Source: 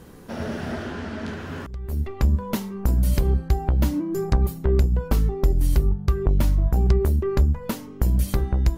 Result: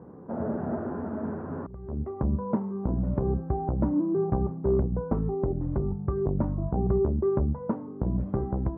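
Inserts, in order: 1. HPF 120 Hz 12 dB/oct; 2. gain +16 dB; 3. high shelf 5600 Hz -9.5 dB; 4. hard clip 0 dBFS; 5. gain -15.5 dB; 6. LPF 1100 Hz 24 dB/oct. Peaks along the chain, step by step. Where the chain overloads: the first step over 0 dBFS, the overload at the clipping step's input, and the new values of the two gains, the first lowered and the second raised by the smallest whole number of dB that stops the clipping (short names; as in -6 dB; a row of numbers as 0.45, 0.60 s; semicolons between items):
-9.5, +6.5, +6.5, 0.0, -15.5, -14.0 dBFS; step 2, 6.5 dB; step 2 +9 dB, step 5 -8.5 dB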